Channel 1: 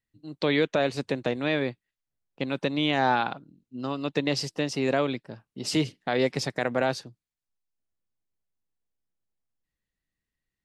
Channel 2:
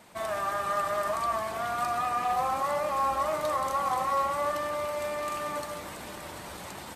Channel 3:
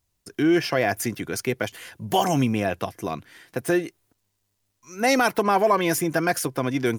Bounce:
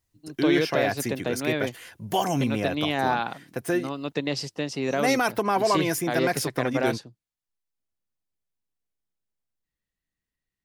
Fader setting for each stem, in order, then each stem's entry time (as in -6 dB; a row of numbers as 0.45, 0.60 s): -1.5 dB, off, -3.5 dB; 0.00 s, off, 0.00 s